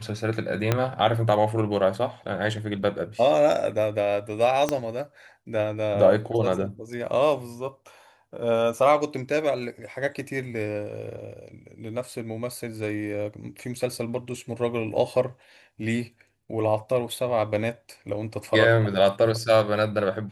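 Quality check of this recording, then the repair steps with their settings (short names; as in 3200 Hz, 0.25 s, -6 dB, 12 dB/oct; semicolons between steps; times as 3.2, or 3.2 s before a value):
0.72 pop -7 dBFS
4.69 pop -10 dBFS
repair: de-click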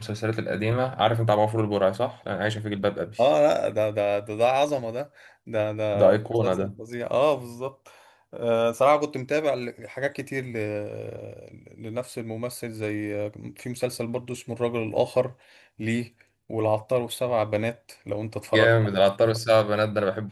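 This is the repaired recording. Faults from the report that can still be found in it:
0.72 pop
4.69 pop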